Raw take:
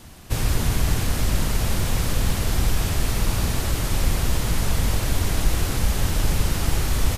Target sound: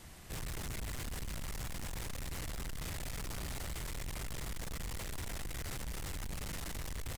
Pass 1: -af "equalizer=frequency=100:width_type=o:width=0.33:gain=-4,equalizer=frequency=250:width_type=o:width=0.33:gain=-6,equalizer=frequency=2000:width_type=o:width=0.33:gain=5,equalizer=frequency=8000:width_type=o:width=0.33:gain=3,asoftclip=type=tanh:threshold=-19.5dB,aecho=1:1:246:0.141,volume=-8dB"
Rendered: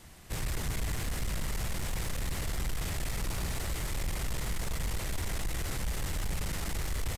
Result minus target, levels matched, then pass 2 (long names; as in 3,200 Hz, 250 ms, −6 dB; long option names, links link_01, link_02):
soft clipping: distortion −6 dB
-af "equalizer=frequency=100:width_type=o:width=0.33:gain=-4,equalizer=frequency=250:width_type=o:width=0.33:gain=-6,equalizer=frequency=2000:width_type=o:width=0.33:gain=5,equalizer=frequency=8000:width_type=o:width=0.33:gain=3,asoftclip=type=tanh:threshold=-30.5dB,aecho=1:1:246:0.141,volume=-8dB"